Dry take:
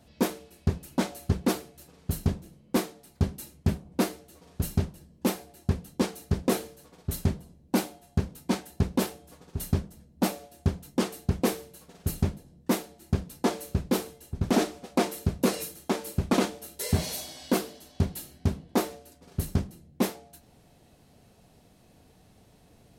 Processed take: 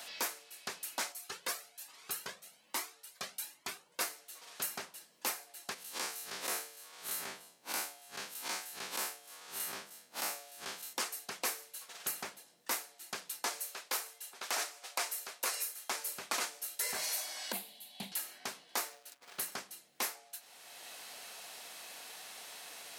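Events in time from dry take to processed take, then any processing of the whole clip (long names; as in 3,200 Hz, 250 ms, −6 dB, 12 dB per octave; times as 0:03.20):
0:01.12–0:04.01: flanger whose copies keep moving one way rising 1.2 Hz
0:05.74–0:10.93: spectrum smeared in time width 86 ms
0:13.60–0:15.89: high-pass filter 450 Hz
0:17.52–0:18.12: drawn EQ curve 120 Hz 0 dB, 200 Hz +13 dB, 300 Hz −7 dB, 480 Hz −10 dB, 810 Hz −4 dB, 1,300 Hz −21 dB, 2,200 Hz −9 dB, 3,900 Hz −6 dB, 5,600 Hz −21 dB, 11,000 Hz −6 dB
0:18.79–0:19.52: slack as between gear wheels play −52 dBFS
whole clip: high-pass filter 1,300 Hz 12 dB per octave; dynamic equaliser 3,400 Hz, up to −7 dB, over −53 dBFS, Q 1.9; multiband upward and downward compressor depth 70%; level +3 dB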